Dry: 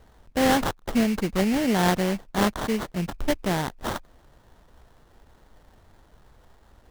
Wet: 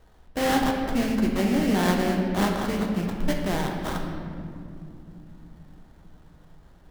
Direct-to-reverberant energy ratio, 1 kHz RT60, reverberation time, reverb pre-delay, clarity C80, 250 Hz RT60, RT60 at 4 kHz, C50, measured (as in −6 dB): 1.0 dB, 2.0 s, 2.6 s, 3 ms, 4.5 dB, 5.1 s, 1.4 s, 3.0 dB